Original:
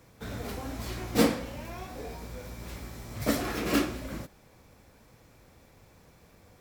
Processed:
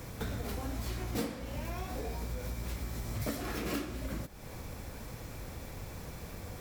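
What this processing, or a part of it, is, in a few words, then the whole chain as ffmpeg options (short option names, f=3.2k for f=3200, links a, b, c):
ASMR close-microphone chain: -af "lowshelf=f=100:g=7.5,acompressor=threshold=-47dB:ratio=5,highshelf=f=8.3k:g=4.5,volume=11dB"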